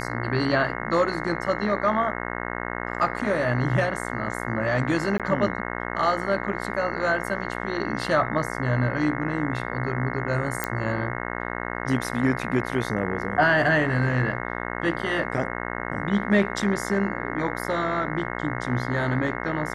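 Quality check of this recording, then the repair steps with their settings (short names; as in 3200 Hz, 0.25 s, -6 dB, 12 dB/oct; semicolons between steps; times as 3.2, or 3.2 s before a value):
buzz 60 Hz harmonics 36 -31 dBFS
5.18–5.2 gap 17 ms
10.64 pop -9 dBFS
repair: de-click; de-hum 60 Hz, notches 36; interpolate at 5.18, 17 ms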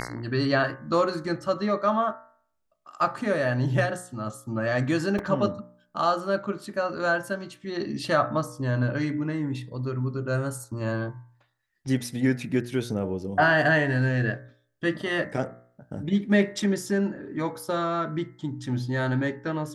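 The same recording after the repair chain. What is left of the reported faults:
none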